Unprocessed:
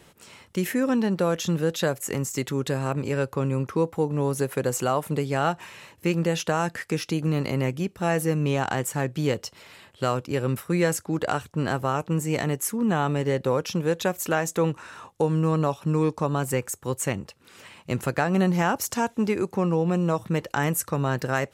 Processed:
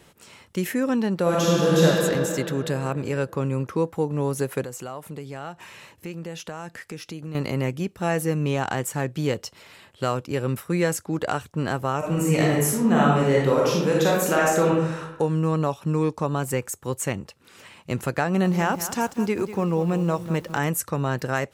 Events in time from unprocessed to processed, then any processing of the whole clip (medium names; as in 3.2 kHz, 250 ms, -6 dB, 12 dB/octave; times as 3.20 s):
1.22–1.86 s: reverb throw, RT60 2.9 s, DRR -6.5 dB
4.64–7.35 s: compression 2:1, threshold -39 dBFS
11.98–15.00 s: reverb throw, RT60 0.92 s, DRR -4 dB
18.25–20.66 s: bit-crushed delay 193 ms, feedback 35%, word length 7-bit, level -12 dB